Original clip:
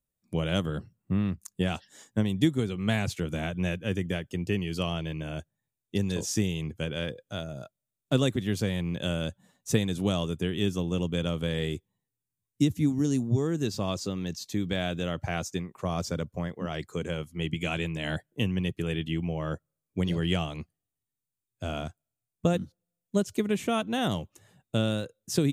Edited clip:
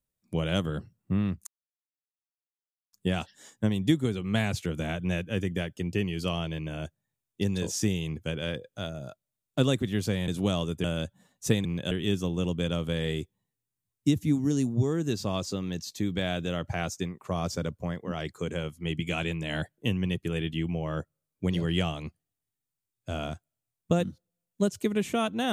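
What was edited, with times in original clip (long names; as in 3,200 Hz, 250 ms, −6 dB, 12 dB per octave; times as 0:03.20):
0:01.47: splice in silence 1.46 s
0:08.82–0:09.08: swap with 0:09.89–0:10.45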